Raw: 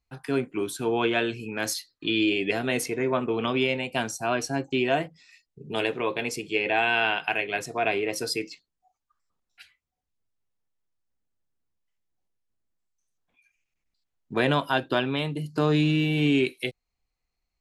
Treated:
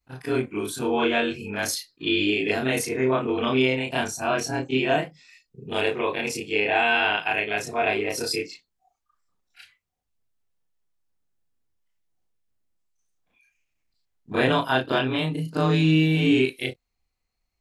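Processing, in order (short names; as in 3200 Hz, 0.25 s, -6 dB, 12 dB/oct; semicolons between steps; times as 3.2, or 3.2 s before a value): short-time reversal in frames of 77 ms; gain +5.5 dB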